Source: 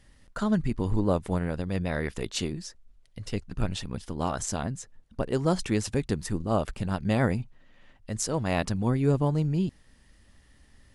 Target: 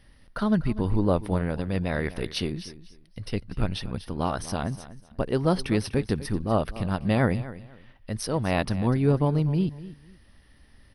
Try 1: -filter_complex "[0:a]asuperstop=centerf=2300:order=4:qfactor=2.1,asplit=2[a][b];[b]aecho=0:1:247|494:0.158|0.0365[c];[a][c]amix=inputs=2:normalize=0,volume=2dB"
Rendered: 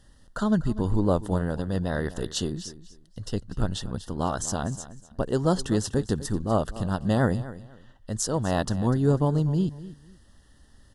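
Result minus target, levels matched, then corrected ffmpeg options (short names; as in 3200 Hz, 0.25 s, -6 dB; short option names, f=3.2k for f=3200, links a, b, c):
8000 Hz band +8.0 dB
-filter_complex "[0:a]asuperstop=centerf=7200:order=4:qfactor=2.1,asplit=2[a][b];[b]aecho=0:1:247|494:0.158|0.0365[c];[a][c]amix=inputs=2:normalize=0,volume=2dB"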